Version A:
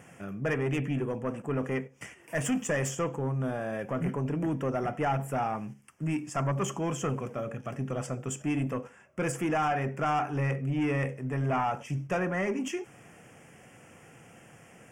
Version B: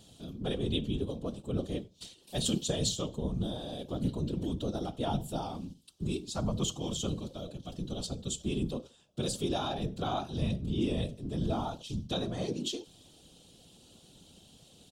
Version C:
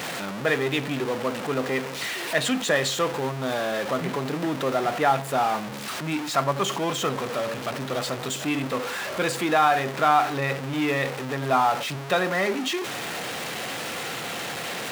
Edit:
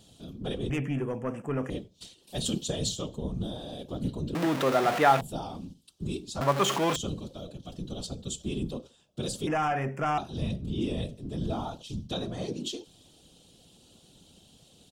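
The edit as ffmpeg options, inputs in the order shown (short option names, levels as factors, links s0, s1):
-filter_complex "[0:a]asplit=2[s0][s1];[2:a]asplit=2[s2][s3];[1:a]asplit=5[s4][s5][s6][s7][s8];[s4]atrim=end=0.702[s9];[s0]atrim=start=0.698:end=1.702[s10];[s5]atrim=start=1.698:end=4.352[s11];[s2]atrim=start=4.348:end=5.212[s12];[s6]atrim=start=5.208:end=6.412[s13];[s3]atrim=start=6.408:end=6.962[s14];[s7]atrim=start=6.958:end=9.472[s15];[s1]atrim=start=9.468:end=10.182[s16];[s8]atrim=start=10.178[s17];[s9][s10]acrossfade=d=0.004:c1=hsin:c2=hsin[s18];[s18][s11]acrossfade=d=0.004:c1=hsin:c2=hsin[s19];[s19][s12]acrossfade=d=0.004:c1=hsin:c2=hsin[s20];[s20][s13]acrossfade=d=0.004:c1=hsin:c2=hsin[s21];[s21][s14]acrossfade=d=0.004:c1=hsin:c2=hsin[s22];[s22][s15]acrossfade=d=0.004:c1=hsin:c2=hsin[s23];[s23][s16]acrossfade=d=0.004:c1=hsin:c2=hsin[s24];[s24][s17]acrossfade=d=0.004:c1=hsin:c2=hsin"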